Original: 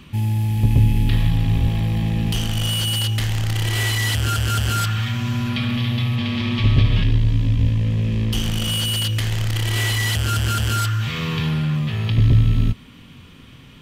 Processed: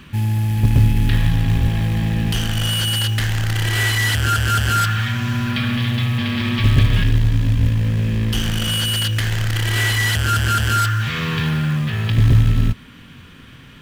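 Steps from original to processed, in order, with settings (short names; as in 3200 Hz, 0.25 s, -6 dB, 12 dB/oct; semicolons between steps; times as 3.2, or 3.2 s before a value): bell 1600 Hz +9 dB 0.47 oct; in parallel at -5 dB: short-mantissa float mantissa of 2-bit; on the sum: gain -2.5 dB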